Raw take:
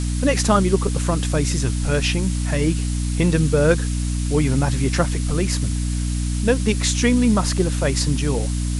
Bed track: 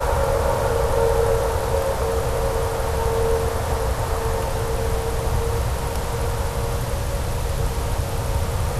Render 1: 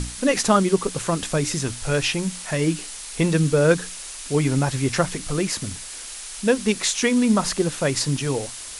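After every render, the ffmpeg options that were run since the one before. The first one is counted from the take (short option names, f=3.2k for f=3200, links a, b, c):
-af "bandreject=f=60:t=h:w=6,bandreject=f=120:t=h:w=6,bandreject=f=180:t=h:w=6,bandreject=f=240:t=h:w=6,bandreject=f=300:t=h:w=6"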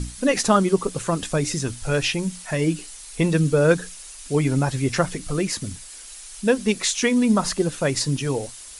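-af "afftdn=nr=8:nf=-36"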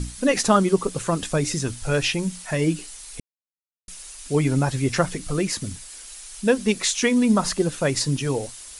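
-filter_complex "[0:a]asplit=3[a][b][c];[a]atrim=end=3.2,asetpts=PTS-STARTPTS,afade=t=out:st=3.196:d=0.004:c=hsin[d];[b]atrim=start=3.2:end=3.88,asetpts=PTS-STARTPTS,volume=0[e];[c]atrim=start=3.88,asetpts=PTS-STARTPTS,afade=t=in:d=0.004:c=hsin[f];[d][e][f]concat=n=3:v=0:a=1"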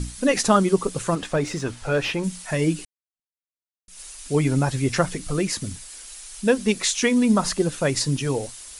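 -filter_complex "[0:a]asettb=1/sr,asplit=3[a][b][c];[a]atrim=end=1.154[d];[b]atrim=start=1.15:end=2.24,asetpts=PTS-STARTPTS,afade=t=in:d=0.004:c=qsin,afade=t=out:st=1.086:d=0.004:c=qsin,asplit=2[e][f];[f]highpass=f=720:p=1,volume=13dB,asoftclip=type=tanh:threshold=-10.5dB[g];[e][g]amix=inputs=2:normalize=0,lowpass=f=1.2k:p=1,volume=-6dB[h];[c]atrim=start=2.236[i];[d][h]acrossfade=d=0.004:c1=hsin:c2=qsin[j];[j][i]acrossfade=d=0.004:c1=qsin:c2=hsin,asplit=2[k][l];[k]atrim=end=2.85,asetpts=PTS-STARTPTS,afade=t=out:st=2.846:d=0.004:c=hsin[m];[l]atrim=start=2.85,asetpts=PTS-STARTPTS,afade=t=in:d=1.15:c=exp[n];[m][n]concat=n=2:v=0:a=1"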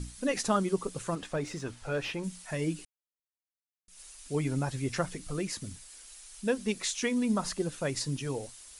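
-af "volume=-10dB"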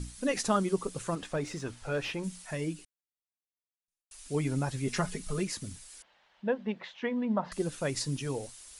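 -filter_complex "[0:a]asettb=1/sr,asplit=3[a][b][c];[a]atrim=end=4.874[d];[b]atrim=start=4.87:end=5.44,asetpts=PTS-STARTPTS,afade=t=in:d=0.004:c=qsin,afade=t=out:st=0.566:d=0.004:c=qsin,aecho=1:1:4.8:0.78,atrim=end_sample=25137[e];[c]atrim=start=5.436[f];[d][e]acrossfade=d=0.004:c1=hsin:c2=qsin[g];[g][f]acrossfade=d=0.004:c1=qsin:c2=hsin,asettb=1/sr,asplit=3[h][i][j];[h]atrim=end=6.024[k];[i]atrim=start=6.02:end=7.52,asetpts=PTS-STARTPTS,afade=t=in:d=0.004:c=qsin,afade=t=out:st=1.496:d=0.004:c=qsin,highpass=140,equalizer=f=280:t=q:w=4:g=-5,equalizer=f=410:t=q:w=4:g=-5,equalizer=f=590:t=q:w=4:g=5,equalizer=f=870:t=q:w=4:g=5,equalizer=f=1.3k:t=q:w=4:g=-4,equalizer=f=2.4k:t=q:w=4:g=-8,lowpass=f=2.7k:w=0.5412,lowpass=f=2.7k:w=1.3066[l];[j]atrim=start=7.516[m];[k][l]acrossfade=d=0.004:c1=hsin:c2=qsin[n];[n][m]acrossfade=d=0.004:c1=qsin:c2=hsin,asplit=2[o][p];[o]atrim=end=4.11,asetpts=PTS-STARTPTS,afade=t=out:st=2.41:d=1.7:c=qua[q];[p]atrim=start=4.11,asetpts=PTS-STARTPTS,afade=t=in:d=0.004:c=hsin[r];[q][r]concat=n=2:v=0:a=1"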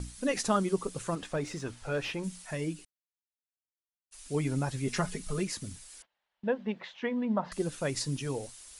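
-af "agate=range=-18dB:threshold=-53dB:ratio=16:detection=peak"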